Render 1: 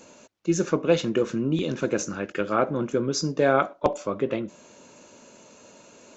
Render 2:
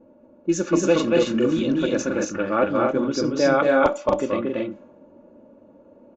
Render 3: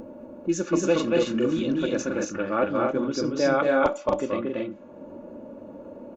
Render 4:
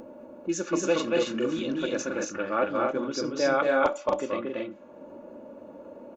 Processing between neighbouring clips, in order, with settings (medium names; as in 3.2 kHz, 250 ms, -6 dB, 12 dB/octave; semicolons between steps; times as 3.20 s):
comb 3.5 ms, depth 51%; level-controlled noise filter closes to 500 Hz, open at -17.5 dBFS; loudspeakers at several distances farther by 79 m -2 dB, 93 m -4 dB
upward compressor, threshold -25 dBFS; trim -3.5 dB
bass shelf 280 Hz -10 dB